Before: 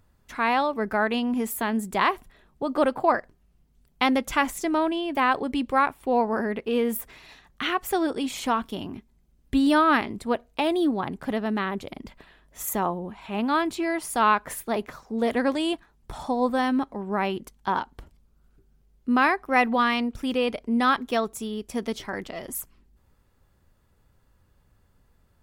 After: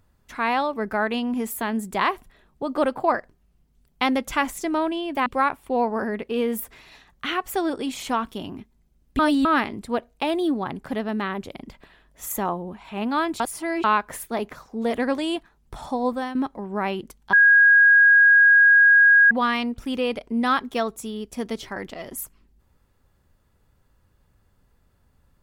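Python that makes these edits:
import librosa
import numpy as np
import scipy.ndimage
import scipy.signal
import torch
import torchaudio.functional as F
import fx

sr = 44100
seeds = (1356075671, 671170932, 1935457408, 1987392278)

y = fx.edit(x, sr, fx.cut(start_s=5.26, length_s=0.37),
    fx.reverse_span(start_s=9.56, length_s=0.26),
    fx.reverse_span(start_s=13.77, length_s=0.44),
    fx.fade_out_to(start_s=16.43, length_s=0.29, floor_db=-10.5),
    fx.bleep(start_s=17.7, length_s=1.98, hz=1640.0, db=-10.5), tone=tone)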